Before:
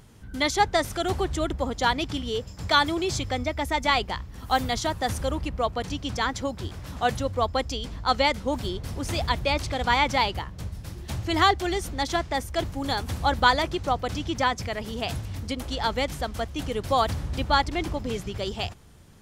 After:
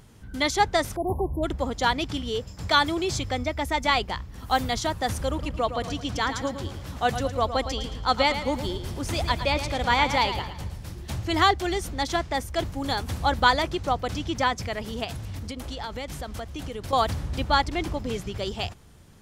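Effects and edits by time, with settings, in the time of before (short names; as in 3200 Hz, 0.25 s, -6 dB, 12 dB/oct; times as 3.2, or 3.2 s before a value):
0.96–1.43 spectral delete 1100–10000 Hz
5.28–10.91 feedback echo 0.111 s, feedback 43%, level -10 dB
15.04–16.93 compressor, threshold -30 dBFS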